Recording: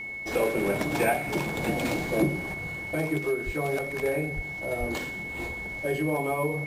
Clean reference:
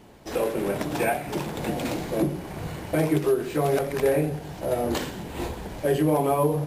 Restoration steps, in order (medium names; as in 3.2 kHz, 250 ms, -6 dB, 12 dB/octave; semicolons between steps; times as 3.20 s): band-stop 2.2 kHz, Q 30; de-plosive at 3.45/4.35/4.79 s; gain correction +6 dB, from 2.54 s